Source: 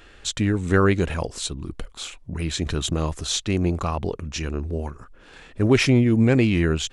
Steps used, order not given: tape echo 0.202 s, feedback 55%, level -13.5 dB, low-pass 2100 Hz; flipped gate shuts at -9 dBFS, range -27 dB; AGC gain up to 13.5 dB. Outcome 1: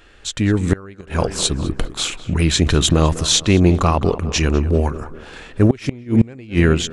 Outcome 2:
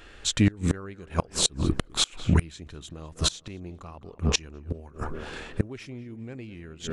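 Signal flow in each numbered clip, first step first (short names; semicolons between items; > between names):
tape echo > flipped gate > AGC; AGC > tape echo > flipped gate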